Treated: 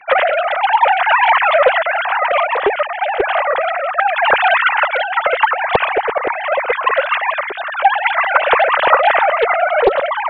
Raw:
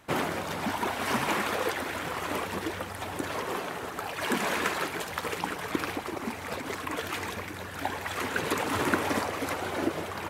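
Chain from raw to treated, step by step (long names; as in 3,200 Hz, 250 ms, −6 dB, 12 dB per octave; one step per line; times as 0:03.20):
three sine waves on the formant tracks
boost into a limiter +17.5 dB
highs frequency-modulated by the lows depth 0.54 ms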